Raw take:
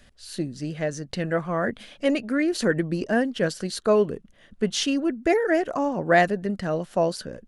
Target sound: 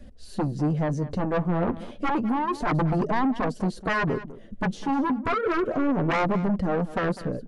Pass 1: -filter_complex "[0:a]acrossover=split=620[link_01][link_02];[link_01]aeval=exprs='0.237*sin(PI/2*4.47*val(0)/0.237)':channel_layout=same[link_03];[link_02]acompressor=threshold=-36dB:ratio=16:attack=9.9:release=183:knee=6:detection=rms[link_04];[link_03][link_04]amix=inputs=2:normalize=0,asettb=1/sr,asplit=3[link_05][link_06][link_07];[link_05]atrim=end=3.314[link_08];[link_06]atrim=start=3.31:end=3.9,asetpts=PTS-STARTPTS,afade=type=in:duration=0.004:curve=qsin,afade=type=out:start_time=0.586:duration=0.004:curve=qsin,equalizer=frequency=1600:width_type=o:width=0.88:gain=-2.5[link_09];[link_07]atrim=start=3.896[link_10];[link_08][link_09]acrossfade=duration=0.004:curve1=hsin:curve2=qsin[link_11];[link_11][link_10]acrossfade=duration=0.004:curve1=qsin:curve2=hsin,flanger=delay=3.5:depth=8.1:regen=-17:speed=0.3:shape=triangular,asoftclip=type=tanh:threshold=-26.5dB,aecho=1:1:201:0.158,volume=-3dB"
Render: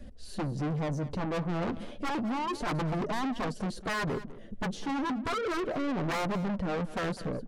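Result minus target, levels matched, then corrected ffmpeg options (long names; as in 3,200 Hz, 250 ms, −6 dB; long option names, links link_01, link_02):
soft clipping: distortion +11 dB
-filter_complex "[0:a]acrossover=split=620[link_01][link_02];[link_01]aeval=exprs='0.237*sin(PI/2*4.47*val(0)/0.237)':channel_layout=same[link_03];[link_02]acompressor=threshold=-36dB:ratio=16:attack=9.9:release=183:knee=6:detection=rms[link_04];[link_03][link_04]amix=inputs=2:normalize=0,asettb=1/sr,asplit=3[link_05][link_06][link_07];[link_05]atrim=end=3.314[link_08];[link_06]atrim=start=3.31:end=3.9,asetpts=PTS-STARTPTS,afade=type=in:duration=0.004:curve=qsin,afade=type=out:start_time=0.586:duration=0.004:curve=qsin,equalizer=frequency=1600:width_type=o:width=0.88:gain=-2.5[link_09];[link_07]atrim=start=3.896[link_10];[link_08][link_09]acrossfade=duration=0.004:curve1=hsin:curve2=qsin[link_11];[link_11][link_10]acrossfade=duration=0.004:curve1=qsin:curve2=hsin,flanger=delay=3.5:depth=8.1:regen=-17:speed=0.3:shape=triangular,asoftclip=type=tanh:threshold=-15.5dB,aecho=1:1:201:0.158,volume=-3dB"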